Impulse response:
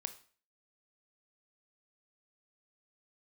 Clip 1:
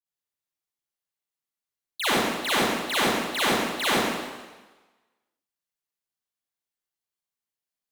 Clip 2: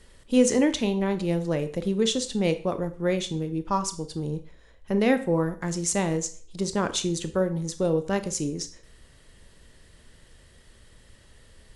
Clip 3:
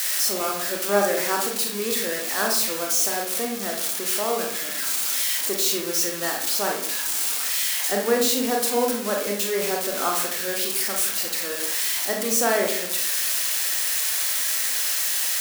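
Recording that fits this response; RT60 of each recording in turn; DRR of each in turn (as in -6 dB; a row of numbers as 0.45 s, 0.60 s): 2; 1.3 s, 0.45 s, 0.60 s; -9.5 dB, 9.5 dB, 0.5 dB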